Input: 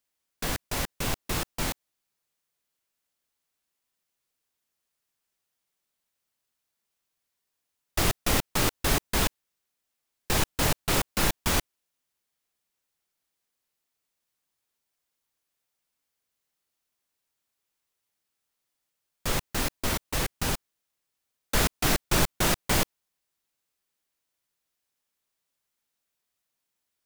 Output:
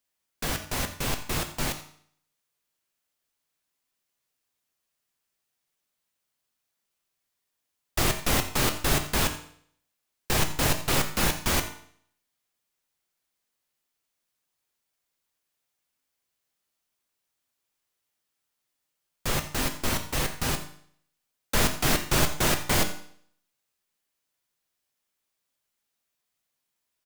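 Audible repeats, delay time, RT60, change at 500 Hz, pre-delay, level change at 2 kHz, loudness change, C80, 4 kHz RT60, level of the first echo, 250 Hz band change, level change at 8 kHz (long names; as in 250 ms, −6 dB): 1, 86 ms, 0.60 s, +0.5 dB, 8 ms, +1.0 dB, +1.0 dB, 12.0 dB, 0.60 s, −16.5 dB, +0.5 dB, +1.0 dB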